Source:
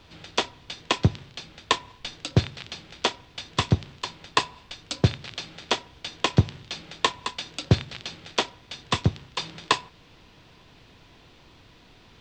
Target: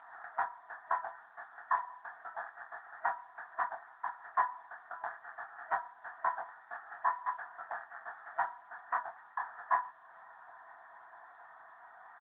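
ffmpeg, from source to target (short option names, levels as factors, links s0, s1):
-filter_complex "[0:a]asplit=2[s0][s1];[s1]acompressor=threshold=0.00891:ratio=6,volume=1.12[s2];[s0][s2]amix=inputs=2:normalize=0,asoftclip=type=tanh:threshold=0.126,asplit=2[s3][s4];[s4]adelay=24,volume=0.631[s5];[s3][s5]amix=inputs=2:normalize=0,afftfilt=real='re*between(b*sr/4096,640,1900)':imag='im*between(b*sr/4096,640,1900)':win_size=4096:overlap=0.75" -ar 8000 -c:a libopencore_amrnb -b:a 10200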